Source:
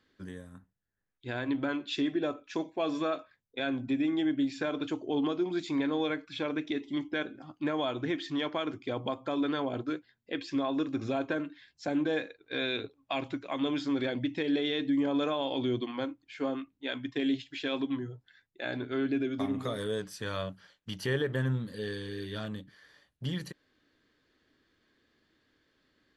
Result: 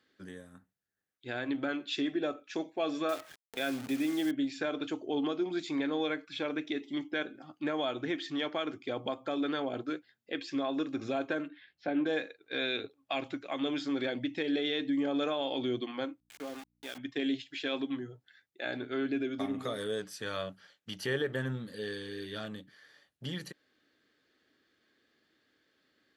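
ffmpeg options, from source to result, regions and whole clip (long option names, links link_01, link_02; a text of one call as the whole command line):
ffmpeg -i in.wav -filter_complex "[0:a]asettb=1/sr,asplit=3[link_01][link_02][link_03];[link_01]atrim=end=3.094[link_04];[link_02]atrim=start=3.09:end=4.31,asetpts=PTS-STARTPTS,afade=type=in:duration=0.004:curve=qsin,afade=type=out:start_time=1.216:duration=0.004:curve=qsin,acrusher=bits=8:dc=4:mix=0:aa=0.000001,acompressor=mode=upward:threshold=-32dB:ratio=2.5:attack=3.2:release=140:knee=2.83:detection=peak[link_05];[link_03]atrim=start=4.306[link_06];[link_04][link_05]acrossfade=duration=0.004:curve1=hsin:curve2=qsin[link_07];[link_07][link_06]acrossfade=duration=0.004:curve1=qsin:curve2=hsin,asettb=1/sr,asplit=3[link_08][link_09][link_10];[link_08]atrim=end=11.484[link_11];[link_09]atrim=start=11.48:end=12.06,asetpts=PTS-STARTPTS,afade=type=in:duration=0.004:curve=qsin,afade=type=out:start_time=0.576:duration=0.004:curve=qsin,lowpass=frequency=3400:width=0.5412,lowpass=frequency=3400:width=1.3066,asplit=2[link_12][link_13];[link_13]adelay=17,volume=-9dB[link_14];[link_12][link_14]amix=inputs=2:normalize=0,atrim=end_sample=25578[link_15];[link_10]atrim=start=12.056[link_16];[link_11][link_15]acrossfade=duration=0.004:curve1=hsin:curve2=qsin[link_17];[link_17][link_16]acrossfade=duration=0.004:curve1=qsin:curve2=hsin,asettb=1/sr,asplit=3[link_18][link_19][link_20];[link_18]atrim=end=16.204[link_21];[link_19]atrim=start=16.2:end=16.98,asetpts=PTS-STARTPTS,afade=type=in:duration=0.004:curve=qsin,afade=type=out:start_time=0.776:duration=0.004:curve=qsin,acompressor=threshold=-47dB:ratio=1.5:attack=3.2:release=140:knee=1:detection=peak,aeval=exprs='val(0)*gte(abs(val(0)),0.0075)':channel_layout=same,aeval=exprs='val(0)+0.000355*(sin(2*PI*60*n/s)+sin(2*PI*2*60*n/s)/2+sin(2*PI*3*60*n/s)/3+sin(2*PI*4*60*n/s)/4+sin(2*PI*5*60*n/s)/5)':channel_layout=same[link_22];[link_20]atrim=start=16.976[link_23];[link_21][link_22]acrossfade=duration=0.004:curve1=hsin:curve2=qsin[link_24];[link_24][link_23]acrossfade=duration=0.004:curve1=qsin:curve2=hsin,highpass=frequency=260:poles=1,bandreject=frequency=1000:width=7.4" out.wav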